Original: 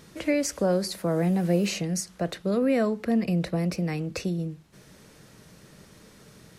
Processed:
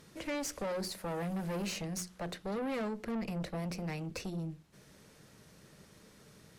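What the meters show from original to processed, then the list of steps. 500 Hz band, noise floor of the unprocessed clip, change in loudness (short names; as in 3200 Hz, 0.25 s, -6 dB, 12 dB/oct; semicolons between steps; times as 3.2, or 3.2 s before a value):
-12.0 dB, -54 dBFS, -11.5 dB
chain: notches 60/120/180/240/300/360 Hz; tube stage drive 29 dB, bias 0.55; gain -4 dB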